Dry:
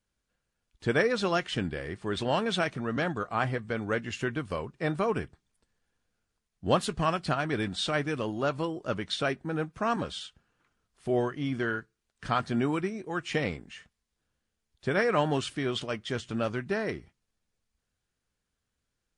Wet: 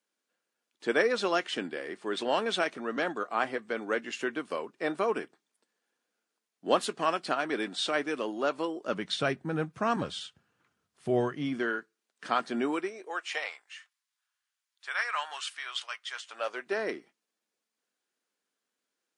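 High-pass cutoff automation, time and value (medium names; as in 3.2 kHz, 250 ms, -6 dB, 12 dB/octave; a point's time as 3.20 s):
high-pass 24 dB/octave
8.80 s 260 Hz
9.22 s 95 Hz
11.17 s 95 Hz
11.72 s 250 Hz
12.63 s 250 Hz
13.70 s 1 kHz
16.12 s 1 kHz
16.86 s 260 Hz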